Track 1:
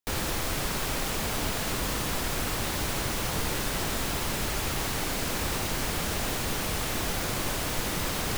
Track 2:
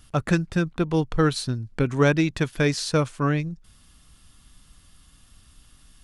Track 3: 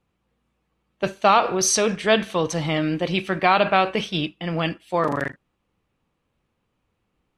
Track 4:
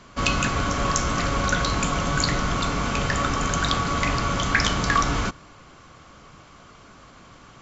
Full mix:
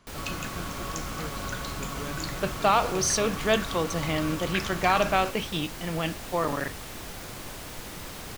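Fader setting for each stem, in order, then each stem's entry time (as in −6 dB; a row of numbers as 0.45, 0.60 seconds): −9.5, −20.0, −5.5, −12.5 decibels; 0.00, 0.00, 1.40, 0.00 seconds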